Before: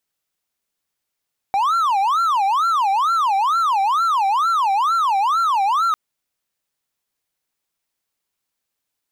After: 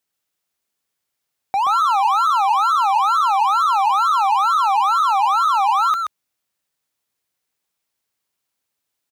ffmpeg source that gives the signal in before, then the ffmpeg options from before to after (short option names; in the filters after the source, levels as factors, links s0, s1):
-f lavfi -i "aevalsrc='0.224*(1-4*abs(mod((1072*t-298/(2*PI*2.2)*sin(2*PI*2.2*t))+0.25,1)-0.5))':d=4.4:s=44100"
-filter_complex "[0:a]highpass=54,asplit=2[s0][s1];[s1]aecho=0:1:127:0.596[s2];[s0][s2]amix=inputs=2:normalize=0"